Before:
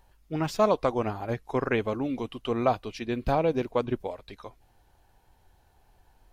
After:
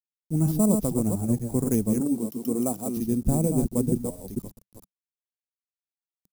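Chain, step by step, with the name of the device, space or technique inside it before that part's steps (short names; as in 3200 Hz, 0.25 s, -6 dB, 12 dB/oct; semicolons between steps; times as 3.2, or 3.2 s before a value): reverse delay 0.231 s, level -5 dB; early 8-bit sampler (sample-rate reducer 8500 Hz, jitter 0%; bit-crush 8-bit); 2–2.97 HPF 210 Hz 12 dB/oct; EQ curve 120 Hz 0 dB, 190 Hz +7 dB, 410 Hz -8 dB, 1600 Hz -26 dB, 3200 Hz -23 dB, 9500 Hz +2 dB; gain +5.5 dB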